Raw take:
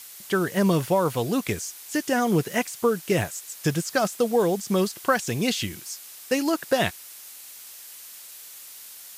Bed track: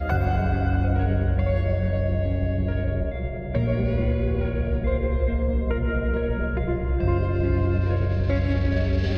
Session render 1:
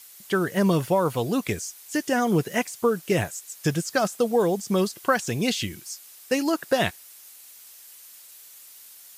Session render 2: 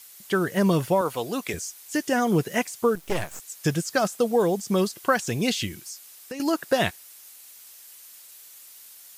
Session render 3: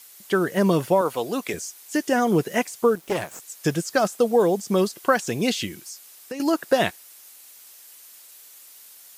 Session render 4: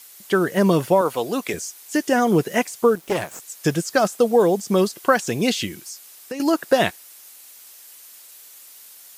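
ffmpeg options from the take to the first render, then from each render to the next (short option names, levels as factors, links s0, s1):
-af "afftdn=nr=6:nf=-44"
-filter_complex "[0:a]asettb=1/sr,asplit=3[s0][s1][s2];[s0]atrim=end=1.014[s3];[s1]atrim=start=1.01:end=1.54,asetpts=PTS-STARTPTS,afade=t=in:d=0.004:c=qsin,afade=t=out:st=0.526:d=0.004:c=qsin,highpass=f=430:p=1[s4];[s2]atrim=start=1.536[s5];[s3][s4]acrossfade=d=0.004:c1=hsin:c2=qsin[s6];[s6][s5]acrossfade=d=0.004:c1=qsin:c2=hsin,asettb=1/sr,asplit=3[s7][s8][s9];[s7]atrim=end=2.954[s10];[s8]atrim=start=2.95:end=3.4,asetpts=PTS-STARTPTS,afade=t=in:d=0.004:c=qsin,afade=t=out:st=0.446:d=0.004:c=qsin,aeval=exprs='max(val(0),0)':c=same[s11];[s9]atrim=start=3.396[s12];[s10][s11]acrossfade=d=0.004:c1=hsin:c2=qsin[s13];[s13][s12]acrossfade=d=0.004:c1=qsin:c2=hsin,asettb=1/sr,asplit=3[s14][s15][s16];[s14]atrim=end=5.844[s17];[s15]atrim=start=5.84:end=6.4,asetpts=PTS-STARTPTS,afade=t=in:d=0.004:c=qsin,afade=t=out:st=0.556:d=0.004:c=qsin,acompressor=threshold=0.0224:ratio=4:attack=3.2:release=140:knee=1:detection=peak[s18];[s16]atrim=start=6.396[s19];[s17][s18]acrossfade=d=0.004:c1=hsin:c2=qsin[s20];[s20][s19]acrossfade=d=0.004:c1=qsin:c2=hsin"
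-af "highpass=f=230:p=1,equalizer=f=290:w=0.32:g=4.5"
-af "volume=1.33"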